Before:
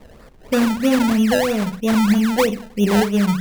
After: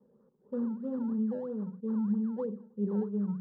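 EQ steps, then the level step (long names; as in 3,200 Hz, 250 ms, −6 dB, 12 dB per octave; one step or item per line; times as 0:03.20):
four-pole ladder band-pass 300 Hz, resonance 20%
phaser with its sweep stopped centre 450 Hz, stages 8
−2.5 dB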